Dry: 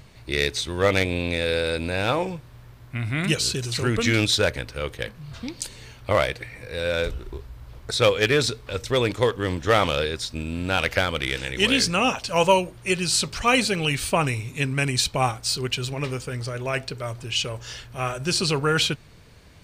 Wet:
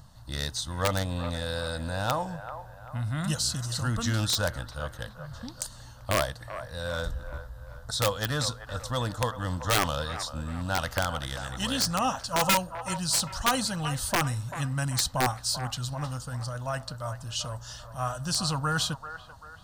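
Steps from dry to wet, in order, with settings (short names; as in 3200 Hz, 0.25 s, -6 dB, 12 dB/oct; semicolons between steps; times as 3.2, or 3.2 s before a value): wow and flutter 19 cents; fixed phaser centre 960 Hz, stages 4; wrapped overs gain 14 dB; on a send: band-limited delay 0.389 s, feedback 43%, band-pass 1000 Hz, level -10 dB; on the sum: gain -1.5 dB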